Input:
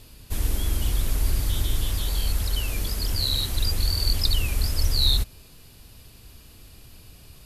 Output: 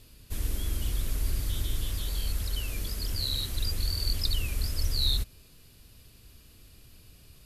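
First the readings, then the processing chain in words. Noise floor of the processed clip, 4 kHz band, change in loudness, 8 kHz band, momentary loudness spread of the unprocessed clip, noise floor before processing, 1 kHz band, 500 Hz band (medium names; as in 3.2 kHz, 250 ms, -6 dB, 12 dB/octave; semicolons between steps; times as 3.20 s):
-56 dBFS, -6.0 dB, -6.0 dB, -6.0 dB, 6 LU, -49 dBFS, -9.0 dB, -7.0 dB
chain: peaking EQ 840 Hz -5 dB 0.68 oct; trim -6 dB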